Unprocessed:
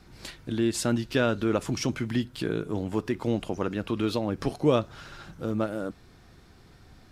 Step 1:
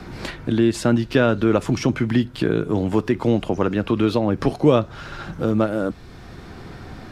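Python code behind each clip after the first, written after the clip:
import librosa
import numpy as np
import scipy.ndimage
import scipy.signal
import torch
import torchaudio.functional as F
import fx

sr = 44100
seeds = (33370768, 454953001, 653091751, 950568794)

y = fx.high_shelf(x, sr, hz=4100.0, db=-9.5)
y = fx.band_squash(y, sr, depth_pct=40)
y = y * 10.0 ** (8.5 / 20.0)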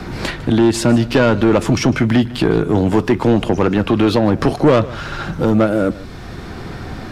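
y = 10.0 ** (-14.5 / 20.0) * np.tanh(x / 10.0 ** (-14.5 / 20.0))
y = y + 10.0 ** (-19.0 / 20.0) * np.pad(y, (int(153 * sr / 1000.0), 0))[:len(y)]
y = y * 10.0 ** (8.5 / 20.0)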